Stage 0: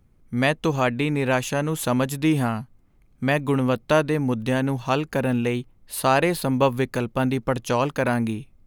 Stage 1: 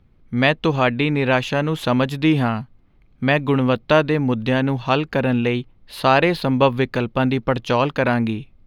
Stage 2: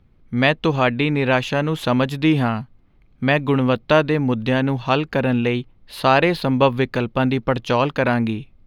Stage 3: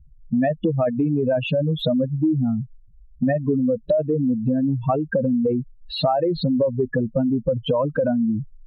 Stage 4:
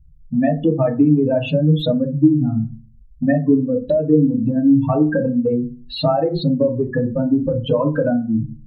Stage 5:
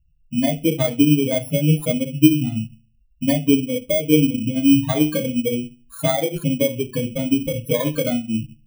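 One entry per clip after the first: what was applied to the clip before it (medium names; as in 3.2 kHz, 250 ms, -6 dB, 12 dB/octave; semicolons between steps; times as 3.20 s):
resonant high shelf 5.6 kHz -13.5 dB, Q 1.5; trim +3.5 dB
no audible change
spectral contrast enhancement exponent 3.9; compression 5:1, threshold -26 dBFS, peak gain reduction 13 dB; trim +7.5 dB
FDN reverb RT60 0.34 s, low-frequency decay 1.5×, high-frequency decay 0.35×, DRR 2 dB
bit-reversed sample order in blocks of 16 samples; upward expansion 1.5:1, over -36 dBFS; trim +1 dB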